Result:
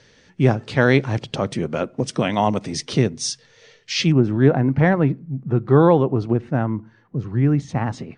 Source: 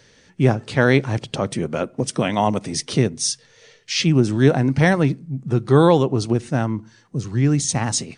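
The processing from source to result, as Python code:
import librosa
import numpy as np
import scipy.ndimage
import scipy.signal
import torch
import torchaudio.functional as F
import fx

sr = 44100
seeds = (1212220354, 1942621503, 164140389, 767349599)

y = fx.lowpass(x, sr, hz=fx.steps((0.0, 6000.0), (4.12, 1800.0)), slope=12)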